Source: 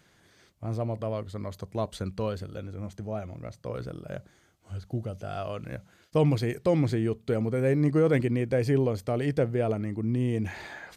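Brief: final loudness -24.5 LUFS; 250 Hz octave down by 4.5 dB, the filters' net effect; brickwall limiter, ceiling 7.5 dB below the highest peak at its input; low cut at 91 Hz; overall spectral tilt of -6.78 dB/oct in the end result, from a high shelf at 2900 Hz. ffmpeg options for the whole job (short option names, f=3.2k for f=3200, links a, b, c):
-af "highpass=91,equalizer=f=250:t=o:g=-6,highshelf=f=2.9k:g=-6,volume=9.5dB,alimiter=limit=-12.5dB:level=0:latency=1"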